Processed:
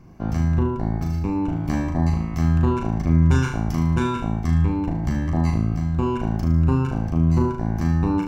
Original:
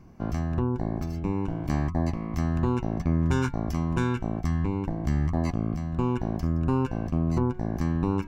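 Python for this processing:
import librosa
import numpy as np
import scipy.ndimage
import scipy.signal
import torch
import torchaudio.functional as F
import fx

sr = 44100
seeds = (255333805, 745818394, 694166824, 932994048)

y = fx.room_flutter(x, sr, wall_m=6.4, rt60_s=0.57)
y = F.gain(torch.from_numpy(y), 2.5).numpy()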